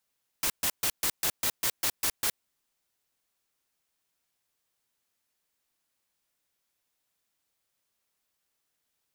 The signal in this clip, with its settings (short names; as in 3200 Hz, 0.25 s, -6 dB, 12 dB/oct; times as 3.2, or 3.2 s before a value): noise bursts white, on 0.07 s, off 0.13 s, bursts 10, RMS -27 dBFS